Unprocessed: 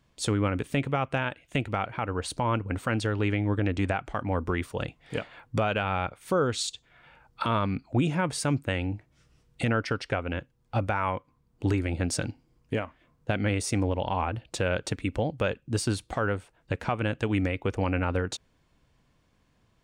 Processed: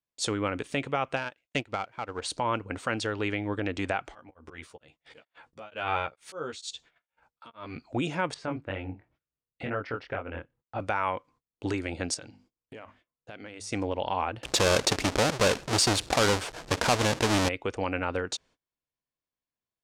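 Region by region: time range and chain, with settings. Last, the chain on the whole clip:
0:01.16–0:02.22: leveller curve on the samples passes 1 + expander for the loud parts 2.5 to 1, over −34 dBFS
0:04.12–0:07.82: volume swells 353 ms + double-tracking delay 13 ms −3 dB + tremolo along a rectified sine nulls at 2.2 Hz
0:08.34–0:10.80: low-pass filter 2,100 Hz + parametric band 65 Hz +4.5 dB 1.8 octaves + chorus effect 2.1 Hz, delay 19.5 ms, depth 6.6 ms
0:12.14–0:13.72: mains-hum notches 50/100/150/200/250 Hz + downward compressor 12 to 1, threshold −36 dBFS
0:14.43–0:17.49: each half-wave held at its own peak + envelope flattener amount 50%
whole clip: noise gate −56 dBFS, range −26 dB; low-pass filter 6,800 Hz 12 dB per octave; bass and treble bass −10 dB, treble +6 dB

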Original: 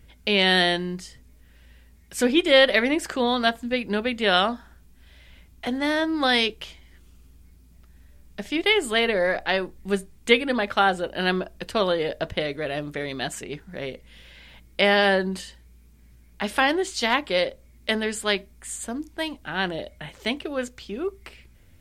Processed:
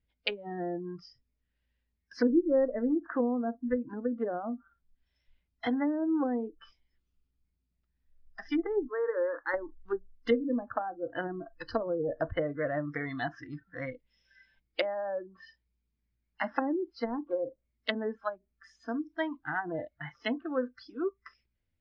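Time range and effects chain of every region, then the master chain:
0:08.87–0:09.54: low-shelf EQ 140 Hz −12 dB + phaser with its sweep stopped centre 710 Hz, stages 6
whole clip: treble cut that deepens with the level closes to 390 Hz, closed at −20 dBFS; elliptic low-pass filter 5,100 Hz, stop band 40 dB; noise reduction from a noise print of the clip's start 26 dB; level −1 dB

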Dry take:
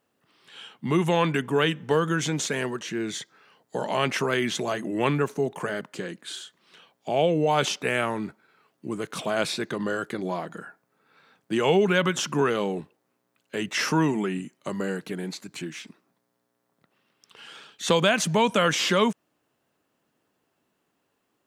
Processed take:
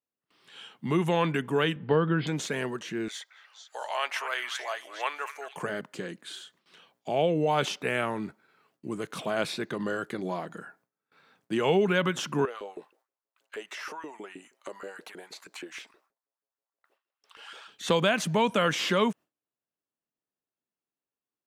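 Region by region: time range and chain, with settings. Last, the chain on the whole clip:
0:01.76–0:02.27: linear-phase brick-wall low-pass 5,100 Hz + spectral tilt −1.5 dB per octave + notch filter 3,500 Hz, Q 30
0:03.08–0:05.56: high-pass filter 660 Hz 24 dB per octave + echo through a band-pass that steps 224 ms, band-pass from 1,700 Hz, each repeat 1.4 octaves, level −7 dB
0:12.45–0:17.68: downward compressor 8 to 1, threshold −33 dBFS + auto-filter high-pass saw up 6.3 Hz 350–1,500 Hz
whole clip: noise gate with hold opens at −53 dBFS; dynamic equaliser 6,900 Hz, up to −5 dB, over −45 dBFS, Q 0.93; level −3 dB

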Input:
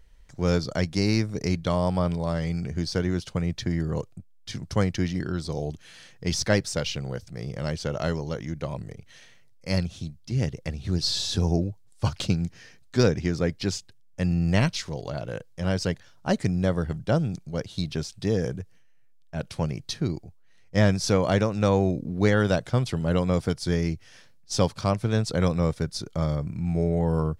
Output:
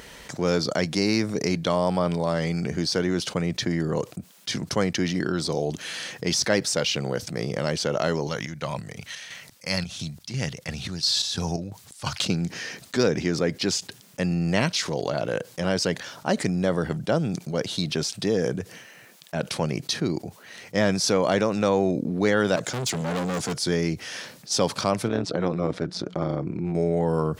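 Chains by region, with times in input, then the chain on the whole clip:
0:08.27–0:12.26: parametric band 360 Hz −12 dB 1.8 octaves + square-wave tremolo 2.9 Hz, depth 65%, duty 55%
0:22.56–0:23.57: parametric band 6,900 Hz +11.5 dB 0.34 octaves + hard clipping −29 dBFS + multiband upward and downward expander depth 40%
0:25.08–0:26.75: amplitude modulation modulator 180 Hz, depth 60% + head-to-tape spacing loss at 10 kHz 21 dB
whole clip: high-pass filter 210 Hz 12 dB per octave; envelope flattener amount 50%

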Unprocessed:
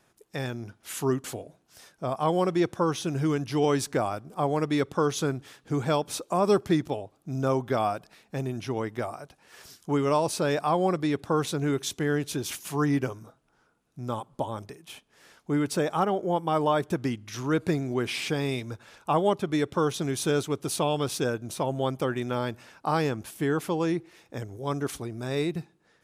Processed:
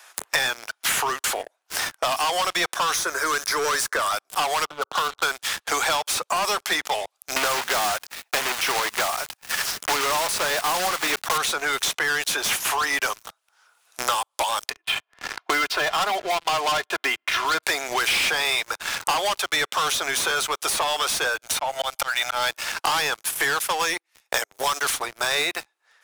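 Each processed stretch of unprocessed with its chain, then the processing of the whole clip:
0:02.94–0:04.12: leveller curve on the samples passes 1 + phaser with its sweep stopped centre 770 Hz, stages 6
0:04.65–0:05.23: linear-phase brick-wall low-pass 1,500 Hz + downward compressor 3 to 1, threshold −28 dBFS
0:07.36–0:11.40: one scale factor per block 3 bits + amplitude tremolo 12 Hz, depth 29%
0:14.70–0:17.63: high-frequency loss of the air 350 metres + comb filter 2.9 ms, depth 55%
0:21.46–0:22.49: Butterworth high-pass 520 Hz + volume swells 216 ms + comb filter 1.4 ms, depth 37%
0:23.12–0:24.77: transient designer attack +4 dB, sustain −10 dB + high-shelf EQ 7,800 Hz +7.5 dB
whole clip: Bessel high-pass filter 1,100 Hz, order 4; leveller curve on the samples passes 5; multiband upward and downward compressor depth 100%

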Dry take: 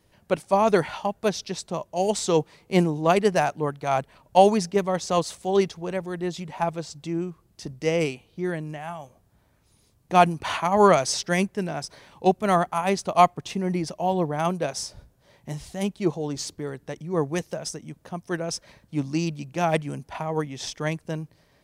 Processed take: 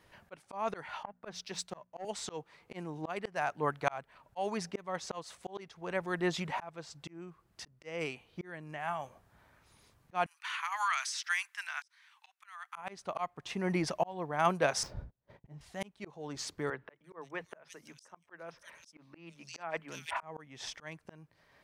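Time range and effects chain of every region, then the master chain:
0:01.03–0:02.05: leveller curve on the samples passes 1 + mains-hum notches 60/120/180/240 Hz + multiband upward and downward expander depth 100%
0:10.26–0:12.76: Bessel high-pass filter 1,900 Hz, order 8 + downward compressor, threshold −32 dBFS + parametric band 4,700 Hz −2 dB 0.4 octaves
0:14.83–0:15.61: running median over 5 samples + noise gate −57 dBFS, range −29 dB + tilt shelving filter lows +9.5 dB, about 690 Hz
0:16.70–0:20.23: low-shelf EQ 200 Hz −11.5 dB + notch filter 750 Hz, Q 8.7 + three-band delay without the direct sound mids, lows, highs 30/340 ms, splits 170/3,100 Hz
whole clip: volume swells 787 ms; parametric band 1,500 Hz +11.5 dB 2.4 octaves; level −4.5 dB

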